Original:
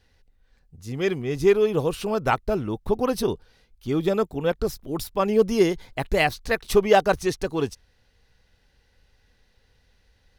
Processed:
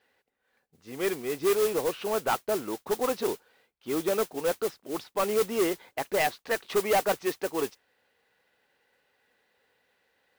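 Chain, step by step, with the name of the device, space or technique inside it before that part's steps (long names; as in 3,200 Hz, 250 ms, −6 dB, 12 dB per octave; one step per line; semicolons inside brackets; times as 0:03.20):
carbon microphone (band-pass filter 380–2,700 Hz; soft clipping −19.5 dBFS, distortion −10 dB; noise that follows the level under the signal 12 dB)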